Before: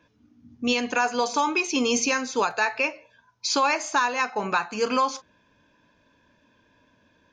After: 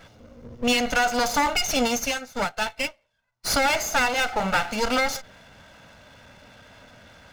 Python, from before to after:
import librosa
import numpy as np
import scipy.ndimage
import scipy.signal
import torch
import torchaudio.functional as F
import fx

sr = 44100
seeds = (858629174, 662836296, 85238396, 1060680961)

y = fx.lower_of_two(x, sr, delay_ms=1.4)
y = fx.power_curve(y, sr, exponent=0.7)
y = fx.upward_expand(y, sr, threshold_db=-37.0, expansion=2.5, at=(1.87, 3.46), fade=0.02)